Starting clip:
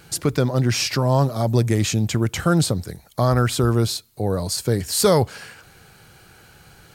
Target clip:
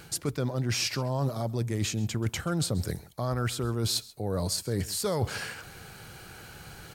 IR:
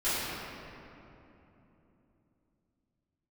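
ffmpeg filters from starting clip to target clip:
-af "areverse,acompressor=threshold=-28dB:ratio=12,areverse,aecho=1:1:133:0.0944,volume=2.5dB"

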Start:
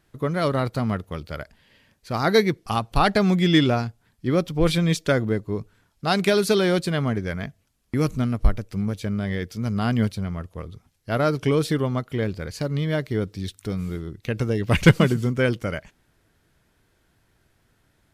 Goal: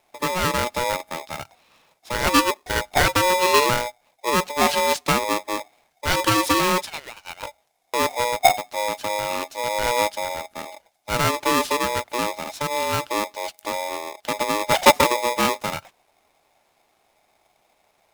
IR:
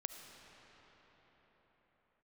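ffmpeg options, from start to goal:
-filter_complex "[0:a]asettb=1/sr,asplit=3[link_01][link_02][link_03];[link_01]atrim=end=6.824[link_04];[link_02]atrim=start=6.82:end=7.43,asetpts=PTS-STARTPTS,afade=type=in:duration=0.004:curve=qsin,afade=type=out:start_time=0.606:duration=0.004:curve=qsin,highpass=frequency=1300:width=0.5412,highpass=frequency=1300:width=1.3066[link_05];[link_03]atrim=start=7.426[link_06];[link_04][link_05]acrossfade=duration=0.004:curve1=hsin:curve2=qsin[link_07];[link_07][link_06]acrossfade=duration=0.004:curve1=qsin:curve2=hsin,aeval=exprs='val(0)*sgn(sin(2*PI*730*n/s))':channel_layout=same"

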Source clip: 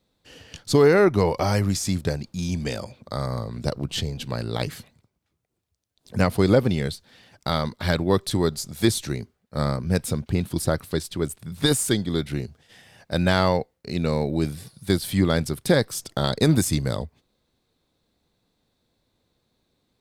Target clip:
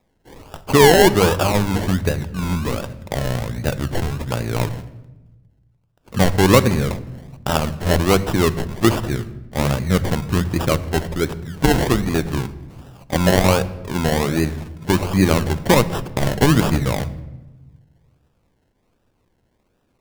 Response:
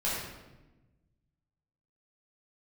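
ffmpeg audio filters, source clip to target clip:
-filter_complex "[0:a]bandreject=frequency=50:width_type=h:width=6,bandreject=frequency=100:width_type=h:width=6,bandreject=frequency=150:width_type=h:width=6,bandreject=frequency=200:width_type=h:width=6,acrusher=samples=29:mix=1:aa=0.000001:lfo=1:lforange=17.4:lforate=1.3,asplit=2[link_01][link_02];[1:a]atrim=start_sample=2205,lowshelf=frequency=110:gain=10.5[link_03];[link_02][link_03]afir=irnorm=-1:irlink=0,volume=-21.5dB[link_04];[link_01][link_04]amix=inputs=2:normalize=0,volume=4.5dB"

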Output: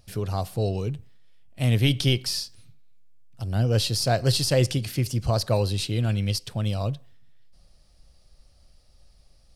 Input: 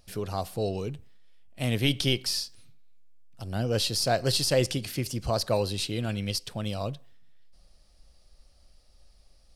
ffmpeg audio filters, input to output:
ffmpeg -i in.wav -af "equalizer=frequency=110:width=1.3:gain=8,volume=1dB" out.wav

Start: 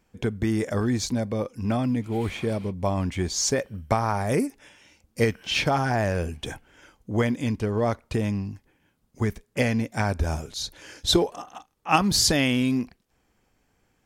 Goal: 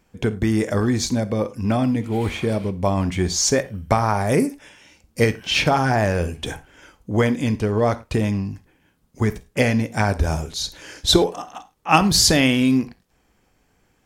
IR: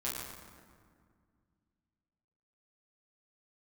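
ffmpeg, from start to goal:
-filter_complex "[0:a]asplit=2[link_01][link_02];[1:a]atrim=start_sample=2205,atrim=end_sample=3969,asetrate=35721,aresample=44100[link_03];[link_02][link_03]afir=irnorm=-1:irlink=0,volume=-14dB[link_04];[link_01][link_04]amix=inputs=2:normalize=0,volume=4dB"

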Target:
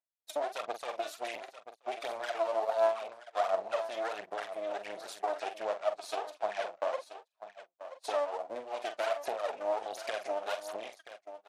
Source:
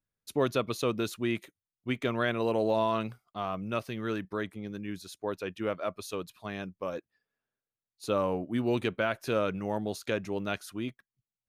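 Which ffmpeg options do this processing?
ffmpeg -i in.wav -filter_complex "[0:a]aphaser=in_gain=1:out_gain=1:delay=3.4:decay=0.75:speed=1.4:type=sinusoidal,acompressor=threshold=-34dB:ratio=10,aemphasis=mode=reproduction:type=75kf,asplit=2[link_01][link_02];[link_02]adelay=45,volume=-9dB[link_03];[link_01][link_03]amix=inputs=2:normalize=0,aecho=1:1:978:0.251,aeval=exprs='max(val(0),0)':channel_layout=same,asettb=1/sr,asplit=3[link_04][link_05][link_06];[link_04]atrim=end=5.624[link_07];[link_05]atrim=start=5.62:end=8.33,asetpts=PTS-STARTPTS,afade=type=in:duration=0.004:curve=qsin,afade=type=out:start_time=2.706:duration=0.004:curve=qsin,lowpass=9600[link_08];[link_06]atrim=start=8.326[link_09];[link_07][link_08]acrossfade=duration=0.004:curve1=hsin:curve2=qsin[link_10];[link_10][link_09]acrossfade=duration=0.004:curve1=qsin:curve2=hsin,agate=range=-18dB:threshold=-53dB:ratio=16:detection=peak,highpass=frequency=660:width_type=q:width=4.9,highshelf=frequency=3600:gain=10,volume=3dB" -ar 48000 -c:a libmp3lame -b:a 56k out.mp3

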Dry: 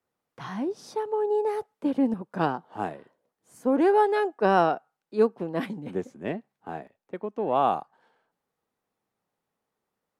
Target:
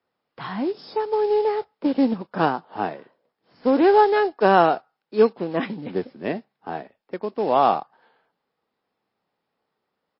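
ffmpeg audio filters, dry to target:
ffmpeg -i in.wav -af "lowshelf=frequency=97:gain=-12,aresample=16000,acrusher=bits=6:mode=log:mix=0:aa=0.000001,aresample=44100,volume=6dB" -ar 12000 -c:a libmp3lame -b:a 24k out.mp3

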